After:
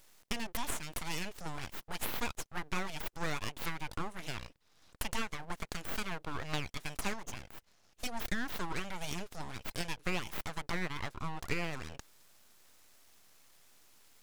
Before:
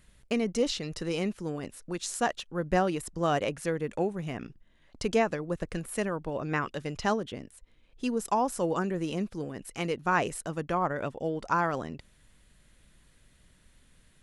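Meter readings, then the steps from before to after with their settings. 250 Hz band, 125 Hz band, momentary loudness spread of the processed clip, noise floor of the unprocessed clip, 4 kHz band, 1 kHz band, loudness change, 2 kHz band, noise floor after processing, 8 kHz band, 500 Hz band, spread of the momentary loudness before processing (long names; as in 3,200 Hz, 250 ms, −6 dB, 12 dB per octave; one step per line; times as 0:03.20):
−11.5 dB, −7.5 dB, 7 LU, −62 dBFS, −2.0 dB, −11.0 dB, −8.5 dB, −4.0 dB, −68 dBFS, −4.0 dB, −15.5 dB, 10 LU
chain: high-pass filter 1,200 Hz 6 dB per octave
full-wave rectification
downward compressor 3 to 1, threshold −40 dBFS, peak gain reduction 12.5 dB
level +7.5 dB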